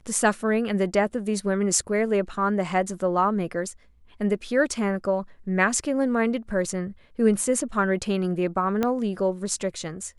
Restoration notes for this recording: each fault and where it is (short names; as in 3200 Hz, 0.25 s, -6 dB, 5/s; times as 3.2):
8.83 pop -11 dBFS